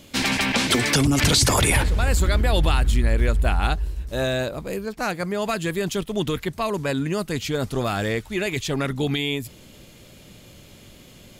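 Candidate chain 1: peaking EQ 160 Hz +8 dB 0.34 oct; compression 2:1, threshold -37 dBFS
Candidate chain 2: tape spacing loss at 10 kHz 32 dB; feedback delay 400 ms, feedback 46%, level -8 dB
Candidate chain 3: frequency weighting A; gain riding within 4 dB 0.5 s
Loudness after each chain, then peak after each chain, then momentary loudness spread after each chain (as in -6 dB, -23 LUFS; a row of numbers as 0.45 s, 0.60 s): -32.5 LUFS, -25.0 LUFS, -25.0 LUFS; -18.5 dBFS, -9.0 dBFS, -7.0 dBFS; 16 LU, 9 LU, 3 LU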